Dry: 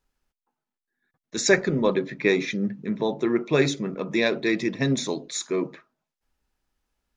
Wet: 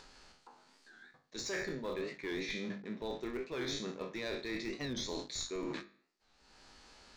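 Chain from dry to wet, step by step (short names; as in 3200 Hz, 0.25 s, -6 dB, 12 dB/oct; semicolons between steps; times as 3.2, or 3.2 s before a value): spectral trails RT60 0.46 s; bell 4400 Hz +9.5 dB 0.24 oct; sample leveller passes 2; LPF 7600 Hz 24 dB/oct; low shelf 150 Hz -11.5 dB; in parallel at -8.5 dB: Schmitt trigger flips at -11 dBFS; on the sum: upward compressor, threshold -32 dBFS; notches 50/100/150/200/250/300/350 Hz; reverse; compressor 6:1, threshold -35 dBFS, peak gain reduction 25 dB; reverse; record warp 45 rpm, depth 160 cents; gain -3.5 dB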